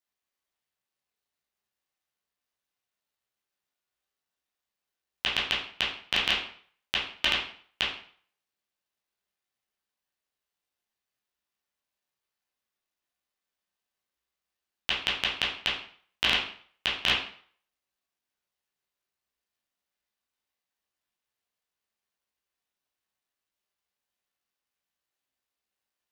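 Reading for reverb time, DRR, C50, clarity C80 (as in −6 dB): 0.50 s, −6.0 dB, 4.5 dB, 9.5 dB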